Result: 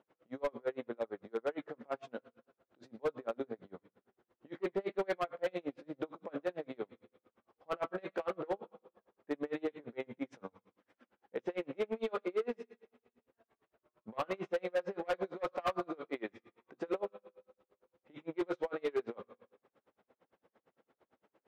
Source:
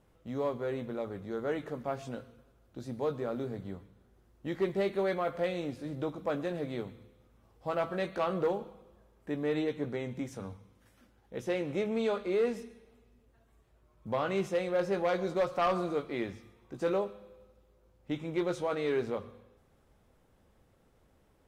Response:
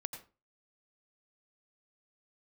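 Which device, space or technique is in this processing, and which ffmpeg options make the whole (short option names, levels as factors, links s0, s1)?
helicopter radio: -af "highpass=310,lowpass=2700,aeval=exprs='val(0)*pow(10,-35*(0.5-0.5*cos(2*PI*8.8*n/s))/20)':c=same,asoftclip=type=hard:threshold=0.0251,volume=1.68"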